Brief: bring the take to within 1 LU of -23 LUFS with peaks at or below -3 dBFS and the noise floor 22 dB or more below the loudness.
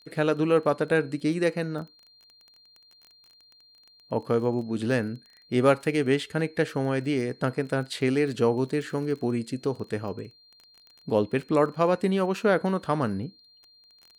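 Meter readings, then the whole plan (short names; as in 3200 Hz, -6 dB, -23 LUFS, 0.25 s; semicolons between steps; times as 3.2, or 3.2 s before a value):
ticks 21/s; steady tone 4200 Hz; tone level -55 dBFS; loudness -26.5 LUFS; peak -8.5 dBFS; loudness target -23.0 LUFS
-> de-click; notch 4200 Hz, Q 30; gain +3.5 dB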